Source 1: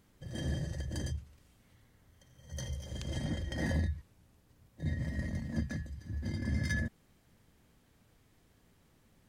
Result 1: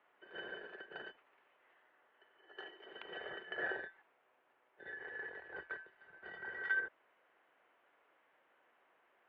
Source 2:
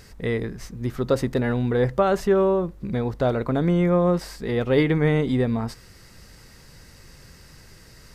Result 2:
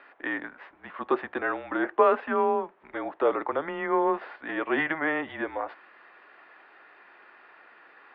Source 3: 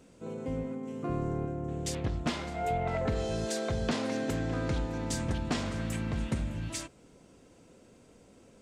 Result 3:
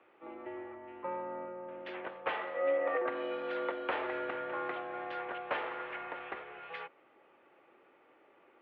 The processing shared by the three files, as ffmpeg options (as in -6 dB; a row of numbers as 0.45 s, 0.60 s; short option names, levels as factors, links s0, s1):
-filter_complex "[0:a]highpass=f=410:t=q:w=0.5412,highpass=f=410:t=q:w=1.307,lowpass=f=3400:t=q:w=0.5176,lowpass=f=3400:t=q:w=0.7071,lowpass=f=3400:t=q:w=1.932,afreqshift=-160,acrossover=split=450 2500:gain=0.0891 1 0.141[s0][s1][s2];[s0][s1][s2]amix=inputs=3:normalize=0,volume=1.78"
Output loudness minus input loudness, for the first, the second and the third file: -6.5 LU, -5.0 LU, -4.0 LU